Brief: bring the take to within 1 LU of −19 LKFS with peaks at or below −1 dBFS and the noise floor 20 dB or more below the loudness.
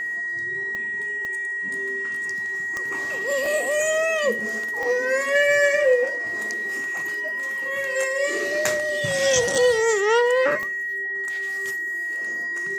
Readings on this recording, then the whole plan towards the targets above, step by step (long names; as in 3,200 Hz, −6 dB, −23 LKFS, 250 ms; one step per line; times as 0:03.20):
number of clicks 7; interfering tone 1,900 Hz; level of the tone −25 dBFS; integrated loudness −22.5 LKFS; sample peak −5.5 dBFS; target loudness −19.0 LKFS
→ click removal
notch filter 1,900 Hz, Q 30
level +3.5 dB